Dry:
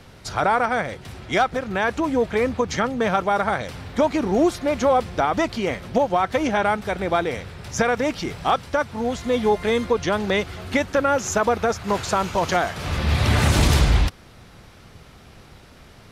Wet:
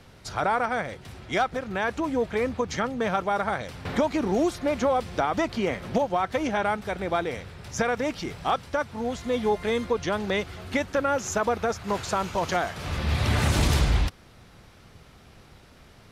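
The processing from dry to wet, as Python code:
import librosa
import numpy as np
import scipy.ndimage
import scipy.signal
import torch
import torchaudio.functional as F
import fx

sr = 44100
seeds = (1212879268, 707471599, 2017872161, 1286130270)

y = fx.band_squash(x, sr, depth_pct=70, at=(3.85, 6.02))
y = y * 10.0 ** (-5.0 / 20.0)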